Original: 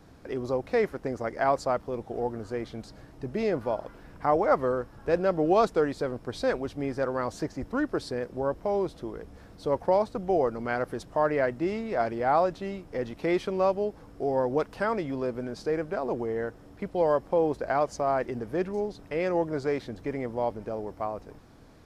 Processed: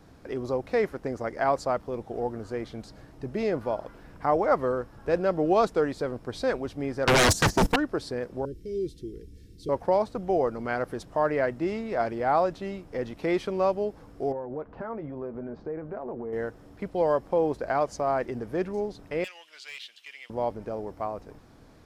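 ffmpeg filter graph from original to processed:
ffmpeg -i in.wav -filter_complex "[0:a]asettb=1/sr,asplit=3[link_01][link_02][link_03];[link_01]atrim=end=7.074[link_04];[link_02]atrim=start=7.07:end=7.76,asetpts=PTS-STARTPTS,afade=type=in:duration=0.004:curve=qsin,afade=type=out:start_time=0.686:duration=0.004:curve=qsin,agate=range=-21dB:threshold=-39dB:ratio=16:release=100:detection=peak,bass=frequency=250:gain=5,treble=frequency=4000:gain=14,aeval=exprs='0.158*sin(PI/2*7.08*val(0)/0.158)':channel_layout=same[link_05];[link_03]atrim=start=7.756[link_06];[link_04][link_05]acrossfade=duration=0.004:curve1=hsin:curve2=qsin[link_07];[link_07][link_06]acrossfade=duration=0.004:curve1=qsin:curve2=hsin,asettb=1/sr,asplit=3[link_08][link_09][link_10];[link_08]atrim=end=8.454[link_11];[link_09]atrim=start=8.45:end=9.69,asetpts=PTS-STARTPTS,afade=type=in:duration=0.004:curve=qsin,afade=type=out:start_time=1.236:duration=0.004:curve=qsin,asuperstop=centerf=870:order=8:qfactor=0.57,equalizer=frequency=1900:width=0.93:gain=-9.5,aecho=1:1:2.2:0.39,atrim=end_sample=54684[link_12];[link_10]atrim=start=9.686[link_13];[link_11][link_12]acrossfade=duration=0.004:curve1=hsin:curve2=qsin[link_14];[link_14][link_13]acrossfade=duration=0.004:curve1=qsin:curve2=hsin,asettb=1/sr,asplit=3[link_15][link_16][link_17];[link_15]atrim=end=14.324[link_18];[link_16]atrim=start=14.32:end=16.33,asetpts=PTS-STARTPTS,afade=type=in:duration=0.004:curve=qsin,afade=type=out:start_time=2.006:duration=0.004:curve=qsin,lowpass=1300,acompressor=threshold=-32dB:ratio=6:attack=3.2:release=140:knee=1:detection=peak,asplit=2[link_19][link_20];[link_20]adelay=13,volume=-9.5dB[link_21];[link_19][link_21]amix=inputs=2:normalize=0,atrim=end_sample=88641[link_22];[link_17]atrim=start=16.326[link_23];[link_18][link_22]acrossfade=duration=0.004:curve1=hsin:curve2=qsin[link_24];[link_24][link_23]acrossfade=duration=0.004:curve1=qsin:curve2=hsin,asettb=1/sr,asplit=3[link_25][link_26][link_27];[link_25]atrim=end=19.244[link_28];[link_26]atrim=start=19.24:end=20.3,asetpts=PTS-STARTPTS,afade=type=in:duration=0.004:curve=qsin,afade=type=out:start_time=1.056:duration=0.004:curve=qsin,highpass=frequency=2900:width_type=q:width=6,volume=33.5dB,asoftclip=hard,volume=-33.5dB[link_29];[link_27]atrim=start=20.296[link_30];[link_28][link_29]acrossfade=duration=0.004:curve1=hsin:curve2=qsin[link_31];[link_31][link_30]acrossfade=duration=0.004:curve1=qsin:curve2=hsin" out.wav

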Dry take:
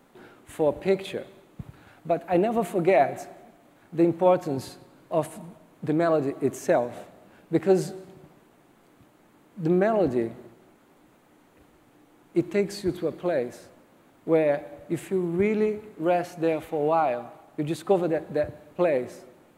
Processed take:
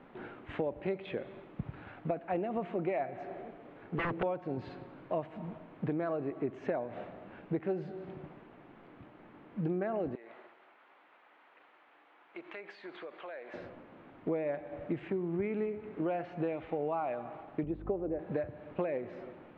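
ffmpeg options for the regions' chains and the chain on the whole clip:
ffmpeg -i in.wav -filter_complex "[0:a]asettb=1/sr,asplit=3[link_01][link_02][link_03];[link_01]atrim=end=3.244[link_04];[link_02]atrim=start=3.24:end=4.23,asetpts=PTS-STARTPTS,afade=type=in:duration=0.004:curve=qsin,afade=type=out:start_time=0.986:duration=0.004:curve=qsin,equalizer=frequency=440:width_type=o:width=0.37:gain=9,aeval=exprs='0.0668*(abs(mod(val(0)/0.0668+3,4)-2)-1)':channel_layout=same[link_05];[link_03]atrim=start=4.226[link_06];[link_04][link_05]acrossfade=duration=0.004:curve1=hsin:curve2=qsin[link_07];[link_07][link_06]acrossfade=duration=0.004:curve1=qsin:curve2=hsin,asettb=1/sr,asplit=3[link_08][link_09][link_10];[link_08]atrim=end=10.154[link_11];[link_09]atrim=start=10.15:end=13.54,asetpts=PTS-STARTPTS,afade=type=in:duration=0.004:curve=qsin,afade=type=out:start_time=3.386:duration=0.004:curve=qsin,highpass=890,acompressor=threshold=-44dB:ratio=6:attack=3.2:release=140:knee=1:detection=peak[link_12];[link_10]atrim=start=13.536[link_13];[link_11][link_12]acrossfade=duration=0.004:curve1=hsin:curve2=qsin[link_14];[link_14][link_13]acrossfade=duration=0.004:curve1=qsin:curve2=hsin,asettb=1/sr,asplit=3[link_15][link_16][link_17];[link_15]atrim=end=17.644[link_18];[link_16]atrim=start=17.64:end=18.19,asetpts=PTS-STARTPTS,afade=type=in:duration=0.004:curve=qsin,afade=type=out:start_time=0.546:duration=0.004:curve=qsin,bandpass=frequency=340:width_type=q:width=0.88,aeval=exprs='val(0)+0.00794*(sin(2*PI*50*n/s)+sin(2*PI*2*50*n/s)/2+sin(2*PI*3*50*n/s)/3+sin(2*PI*4*50*n/s)/4+sin(2*PI*5*50*n/s)/5)':channel_layout=same[link_19];[link_17]atrim=start=18.186[link_20];[link_18][link_19]acrossfade=duration=0.004:curve1=hsin:curve2=qsin[link_21];[link_21][link_20]acrossfade=duration=0.004:curve1=qsin:curve2=hsin,lowpass=frequency=2900:width=0.5412,lowpass=frequency=2900:width=1.3066,acompressor=threshold=-35dB:ratio=6,volume=3dB" out.wav

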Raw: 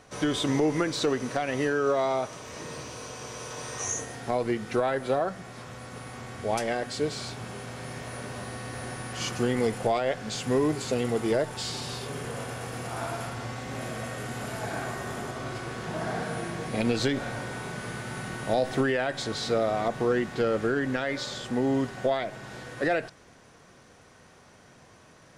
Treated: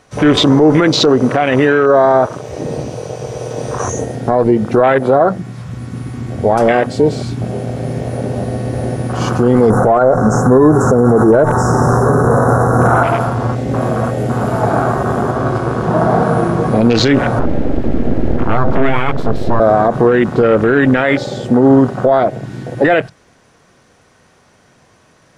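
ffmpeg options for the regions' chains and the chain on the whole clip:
ffmpeg -i in.wav -filter_complex "[0:a]asettb=1/sr,asplit=3[link_01][link_02][link_03];[link_01]atrim=end=9.704[link_04];[link_02]atrim=start=9.7:end=13.03,asetpts=PTS-STARTPTS,afade=type=in:duration=0.004:curve=qsin,afade=type=out:start_time=3.326:duration=0.004:curve=qsin,equalizer=frequency=1500:width=4.1:gain=5,acontrast=60,asuperstop=centerf=2900:order=20:qfactor=0.74[link_05];[link_03]atrim=start=13.026[link_06];[link_04][link_05]acrossfade=duration=0.004:curve1=hsin:curve2=qsin[link_07];[link_07][link_06]acrossfade=duration=0.004:curve1=qsin:curve2=hsin,asettb=1/sr,asplit=3[link_08][link_09][link_10];[link_08]atrim=end=17.394[link_11];[link_09]atrim=start=17.39:end=19.6,asetpts=PTS-STARTPTS,afade=type=in:duration=0.004:curve=qsin,afade=type=out:start_time=2.206:duration=0.004:curve=qsin,lowpass=frequency=3500:poles=1,aemphasis=mode=reproduction:type=bsi,aeval=exprs='abs(val(0))':channel_layout=same[link_12];[link_10]atrim=start=19.596[link_13];[link_11][link_12]acrossfade=duration=0.004:curve1=hsin:curve2=qsin[link_14];[link_14][link_13]acrossfade=duration=0.004:curve1=qsin:curve2=hsin,afwtdn=0.0224,alimiter=level_in=21.5dB:limit=-1dB:release=50:level=0:latency=1,volume=-1dB" out.wav

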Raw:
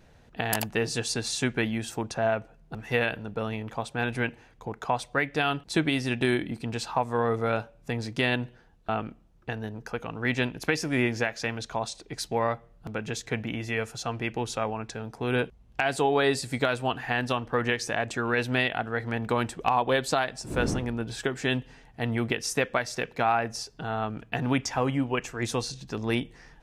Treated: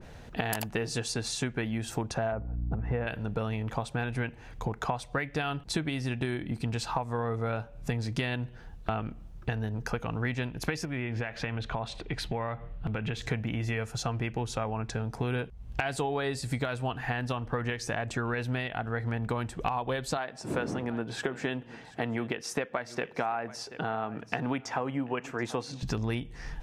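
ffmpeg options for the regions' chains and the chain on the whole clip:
ffmpeg -i in.wav -filter_complex "[0:a]asettb=1/sr,asplit=3[link_01][link_02][link_03];[link_01]atrim=end=2.324[link_04];[link_02]atrim=start=2.32:end=3.07,asetpts=PTS-STARTPTS,afade=type=in:duration=0.004:curve=qsin,afade=type=out:start_time=0.746:duration=0.004:curve=qsin,lowpass=1100,aeval=exprs='val(0)+0.00891*(sin(2*PI*60*n/s)+sin(2*PI*2*60*n/s)/2+sin(2*PI*3*60*n/s)/3+sin(2*PI*4*60*n/s)/4+sin(2*PI*5*60*n/s)/5)':channel_layout=same[link_05];[link_03]atrim=start=3.066[link_06];[link_04][link_05]acrossfade=duration=0.004:curve1=hsin:curve2=qsin[link_07];[link_07][link_06]acrossfade=duration=0.004:curve1=qsin:curve2=hsin,asettb=1/sr,asplit=3[link_08][link_09][link_10];[link_08]atrim=end=10.854[link_11];[link_09]atrim=start=10.85:end=13.22,asetpts=PTS-STARTPTS,afade=type=in:duration=0.004:curve=qsin,afade=type=out:start_time=2.366:duration=0.004:curve=qsin,highshelf=frequency=4300:width_type=q:width=1.5:gain=-11.5,acompressor=threshold=-39dB:ratio=2:attack=3.2:release=140:knee=1:detection=peak[link_12];[link_10]atrim=start=13.216[link_13];[link_11][link_12]acrossfade=duration=0.004:curve1=hsin:curve2=qsin[link_14];[link_14][link_13]acrossfade=duration=0.004:curve1=qsin:curve2=hsin,asettb=1/sr,asplit=3[link_15][link_16][link_17];[link_15]atrim=end=20.174[link_18];[link_16]atrim=start=20.17:end=25.83,asetpts=PTS-STARTPTS,afade=type=in:duration=0.004:curve=qsin,afade=type=out:start_time=5.656:duration=0.004:curve=qsin,highpass=240,highshelf=frequency=3700:gain=-10.5,aecho=1:1:731:0.0841,atrim=end_sample=249606[link_19];[link_17]atrim=start=25.826[link_20];[link_18][link_19]acrossfade=duration=0.004:curve1=hsin:curve2=qsin[link_21];[link_21][link_20]acrossfade=duration=0.004:curve1=qsin:curve2=hsin,asubboost=boost=2:cutoff=170,acompressor=threshold=-37dB:ratio=6,adynamicequalizer=threshold=0.00224:dfrequency=1900:dqfactor=0.7:tfrequency=1900:tqfactor=0.7:attack=5:release=100:ratio=0.375:range=2:mode=cutabove:tftype=highshelf,volume=8.5dB" out.wav

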